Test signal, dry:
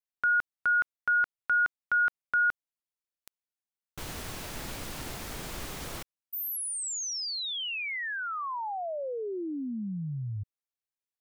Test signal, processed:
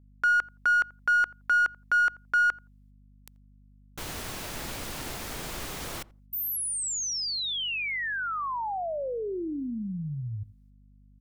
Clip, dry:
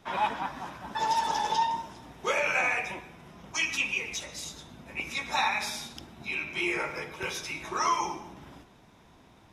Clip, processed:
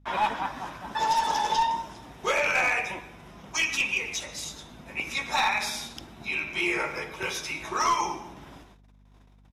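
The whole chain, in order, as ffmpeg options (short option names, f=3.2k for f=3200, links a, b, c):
-filter_complex "[0:a]agate=range=-26dB:threshold=-53dB:ratio=16:release=235:detection=rms,lowshelf=f=280:g=-3,aeval=exprs='val(0)+0.00126*(sin(2*PI*50*n/s)+sin(2*PI*2*50*n/s)/2+sin(2*PI*3*50*n/s)/3+sin(2*PI*4*50*n/s)/4+sin(2*PI*5*50*n/s)/5)':c=same,aeval=exprs='clip(val(0),-1,0.075)':c=same,asplit=2[a][b];[b]adelay=85,lowpass=f=840:p=1,volume=-18.5dB,asplit=2[c][d];[d]adelay=85,lowpass=f=840:p=1,volume=0.18[e];[c][e]amix=inputs=2:normalize=0[f];[a][f]amix=inputs=2:normalize=0,volume=3dB"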